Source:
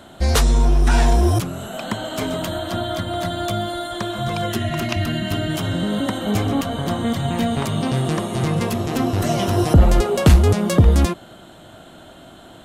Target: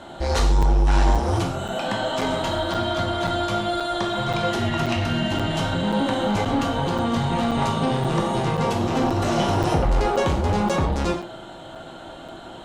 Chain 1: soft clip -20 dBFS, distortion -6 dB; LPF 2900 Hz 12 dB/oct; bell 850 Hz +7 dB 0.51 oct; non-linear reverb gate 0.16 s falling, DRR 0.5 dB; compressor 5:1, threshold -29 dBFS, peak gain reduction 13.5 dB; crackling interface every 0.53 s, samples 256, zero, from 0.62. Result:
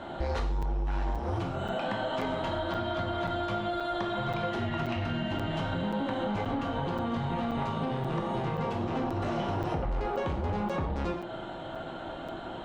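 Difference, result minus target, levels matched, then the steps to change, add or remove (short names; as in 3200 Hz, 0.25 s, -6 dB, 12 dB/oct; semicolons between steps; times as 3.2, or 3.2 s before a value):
compressor: peak gain reduction +13.5 dB; 8000 Hz band -11.5 dB
change: LPF 6800 Hz 12 dB/oct; remove: compressor 5:1, threshold -29 dBFS, peak gain reduction 13.5 dB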